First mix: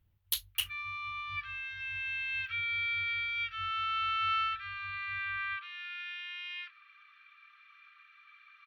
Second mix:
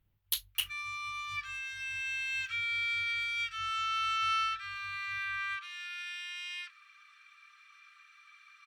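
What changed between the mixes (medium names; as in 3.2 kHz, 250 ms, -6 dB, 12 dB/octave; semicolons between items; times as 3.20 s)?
background: remove low-pass 3.6 kHz 24 dB/octave; master: add peaking EQ 77 Hz -11 dB 0.49 oct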